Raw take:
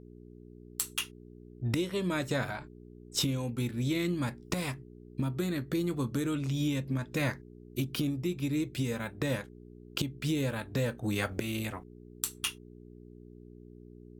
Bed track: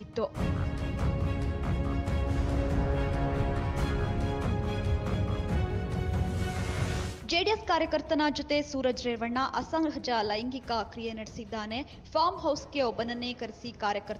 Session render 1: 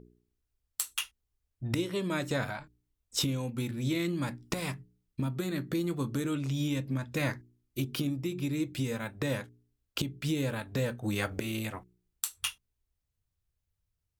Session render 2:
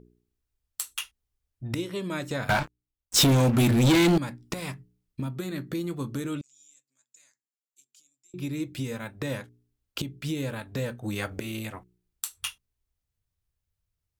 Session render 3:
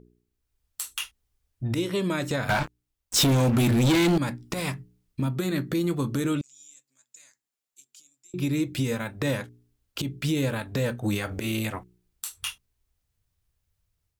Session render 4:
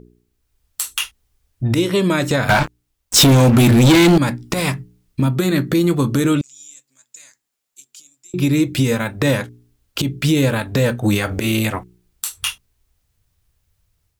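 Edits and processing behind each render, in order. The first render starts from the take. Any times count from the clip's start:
de-hum 60 Hz, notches 7
2.49–4.18 sample leveller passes 5; 6.41–8.34 band-pass 7200 Hz, Q 12
AGC gain up to 6.5 dB; limiter -17.5 dBFS, peak gain reduction 10 dB
gain +10 dB

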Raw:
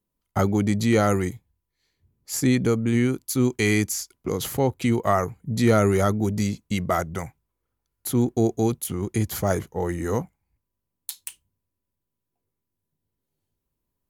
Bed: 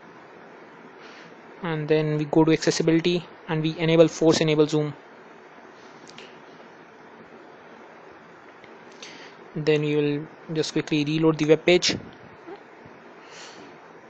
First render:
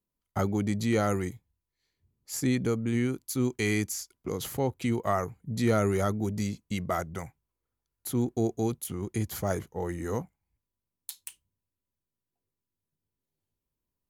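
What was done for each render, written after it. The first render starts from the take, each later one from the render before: gain -6.5 dB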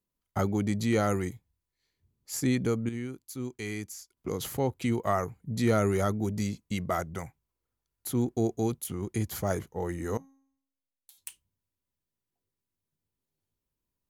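2.89–4.17 gain -8.5 dB; 10.17–11.18 resonator 270 Hz, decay 0.7 s, mix 90%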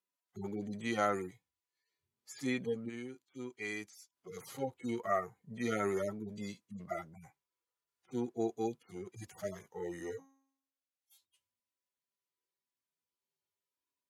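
median-filter separation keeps harmonic; weighting filter A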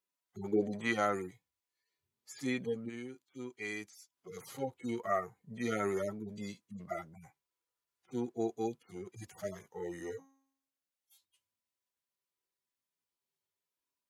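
0.52–0.92 bell 350 Hz -> 1400 Hz +14.5 dB 1.4 oct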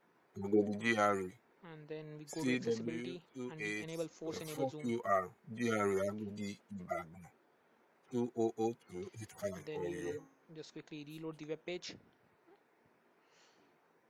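add bed -25 dB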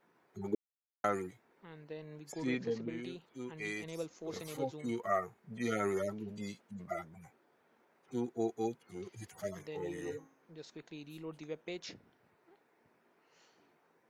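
0.55–1.04 mute; 2.32–3.03 air absorption 120 m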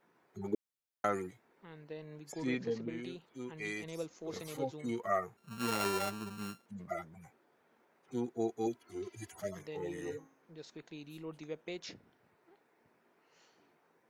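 5.37–6.66 sample sorter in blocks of 32 samples; 8.66–9.4 comb 3 ms, depth 77%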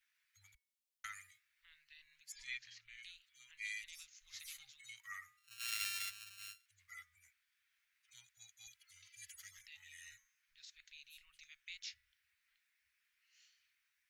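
inverse Chebyshev band-stop 210–540 Hz, stop band 80 dB; de-hum 246 Hz, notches 9

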